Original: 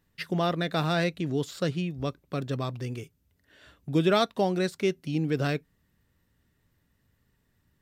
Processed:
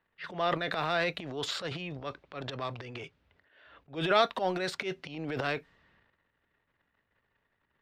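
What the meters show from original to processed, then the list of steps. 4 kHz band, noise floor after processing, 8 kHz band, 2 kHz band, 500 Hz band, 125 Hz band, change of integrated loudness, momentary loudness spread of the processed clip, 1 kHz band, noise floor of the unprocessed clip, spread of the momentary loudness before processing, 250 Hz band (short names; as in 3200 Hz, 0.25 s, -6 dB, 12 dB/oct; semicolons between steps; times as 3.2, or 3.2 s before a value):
-0.5 dB, -79 dBFS, -3.5 dB, +1.0 dB, -4.0 dB, -11.5 dB, -4.0 dB, 15 LU, 0.0 dB, -72 dBFS, 11 LU, -10.0 dB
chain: transient shaper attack -11 dB, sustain +12 dB; three-band isolator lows -15 dB, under 470 Hz, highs -16 dB, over 4300 Hz; low-pass opened by the level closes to 2800 Hz, open at -31 dBFS; gain +1.5 dB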